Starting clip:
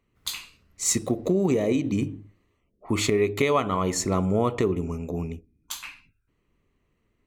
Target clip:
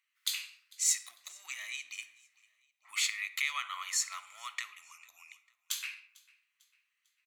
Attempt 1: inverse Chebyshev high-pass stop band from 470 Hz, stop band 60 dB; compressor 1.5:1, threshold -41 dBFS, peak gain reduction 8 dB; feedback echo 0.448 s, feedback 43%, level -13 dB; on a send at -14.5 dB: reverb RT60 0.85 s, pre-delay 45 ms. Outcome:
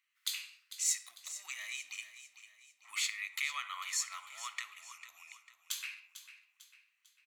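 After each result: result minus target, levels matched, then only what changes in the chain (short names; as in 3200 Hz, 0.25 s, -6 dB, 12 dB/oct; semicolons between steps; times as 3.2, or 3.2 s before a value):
compressor: peak gain reduction +3.5 dB; echo-to-direct +4 dB
change: compressor 1.5:1, threshold -30.5 dBFS, peak gain reduction 4.5 dB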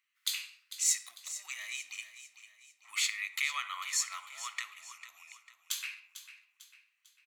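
echo-to-direct +4 dB
change: feedback echo 0.448 s, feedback 43%, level -25 dB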